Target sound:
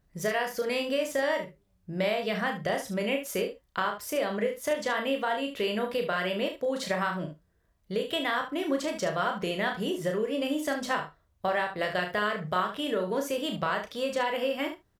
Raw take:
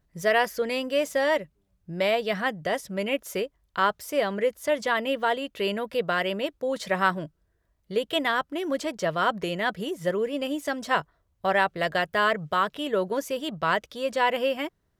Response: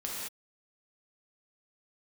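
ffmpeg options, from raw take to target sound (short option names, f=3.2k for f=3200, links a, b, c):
-filter_complex "[0:a]acompressor=threshold=-27dB:ratio=5,aecho=1:1:33|72:0.531|0.335,asplit=2[a][b];[1:a]atrim=start_sample=2205,atrim=end_sample=3528[c];[b][c]afir=irnorm=-1:irlink=0,volume=-9dB[d];[a][d]amix=inputs=2:normalize=0,volume=-1.5dB"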